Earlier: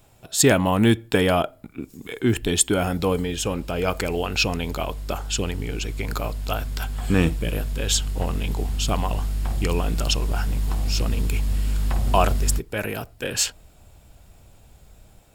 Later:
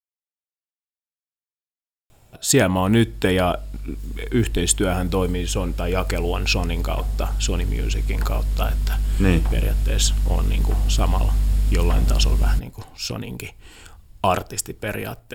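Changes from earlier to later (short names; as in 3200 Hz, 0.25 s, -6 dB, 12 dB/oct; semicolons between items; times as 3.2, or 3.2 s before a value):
speech: entry +2.10 s; master: add low shelf 68 Hz +6.5 dB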